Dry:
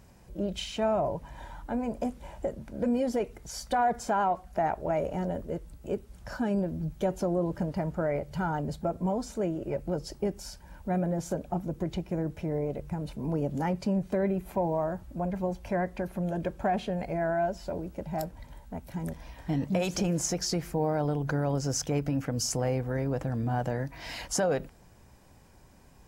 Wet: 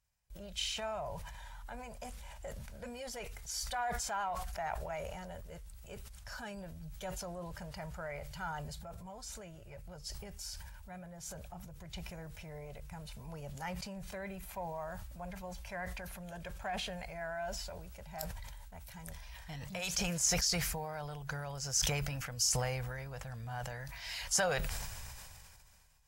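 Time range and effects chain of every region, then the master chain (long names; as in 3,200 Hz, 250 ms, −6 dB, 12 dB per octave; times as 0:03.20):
0:08.74–0:11.94: parametric band 98 Hz +5.5 dB 1.3 octaves + downward compressor 1.5 to 1, threshold −40 dBFS
whole clip: noise gate with hold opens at −40 dBFS; guitar amp tone stack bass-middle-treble 10-0-10; level that may fall only so fast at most 25 dB per second; level +1 dB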